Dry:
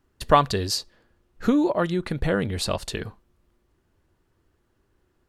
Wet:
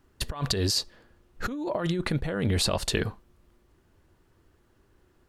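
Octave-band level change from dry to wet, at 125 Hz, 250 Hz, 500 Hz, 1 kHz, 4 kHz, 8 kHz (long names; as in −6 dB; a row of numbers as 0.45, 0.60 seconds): 0.0, −6.0, −6.5, −12.5, +1.5, +1.5 decibels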